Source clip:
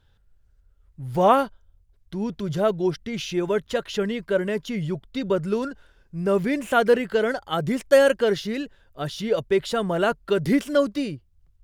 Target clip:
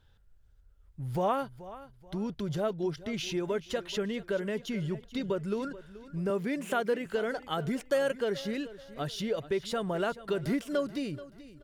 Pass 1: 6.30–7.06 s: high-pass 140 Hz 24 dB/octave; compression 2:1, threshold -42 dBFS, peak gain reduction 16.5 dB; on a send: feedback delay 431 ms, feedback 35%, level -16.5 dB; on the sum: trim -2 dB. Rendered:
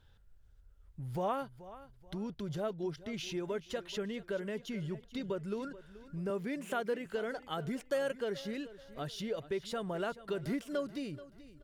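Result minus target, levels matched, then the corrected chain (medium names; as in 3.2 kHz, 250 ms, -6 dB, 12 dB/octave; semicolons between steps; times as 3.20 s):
compression: peak gain reduction +5.5 dB
6.30–7.06 s: high-pass 140 Hz 24 dB/octave; compression 2:1, threshold -31 dBFS, peak gain reduction 11 dB; on a send: feedback delay 431 ms, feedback 35%, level -16.5 dB; on the sum: trim -2 dB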